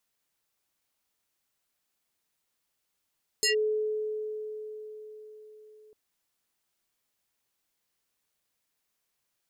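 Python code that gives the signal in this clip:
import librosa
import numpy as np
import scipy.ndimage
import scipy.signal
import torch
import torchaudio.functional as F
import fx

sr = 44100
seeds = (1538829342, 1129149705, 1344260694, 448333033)

y = fx.fm2(sr, length_s=2.5, level_db=-21.5, carrier_hz=429.0, ratio=5.51, index=4.0, index_s=0.12, decay_s=4.78, shape='linear')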